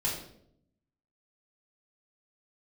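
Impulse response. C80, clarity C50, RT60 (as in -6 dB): 7.5 dB, 4.5 dB, 0.70 s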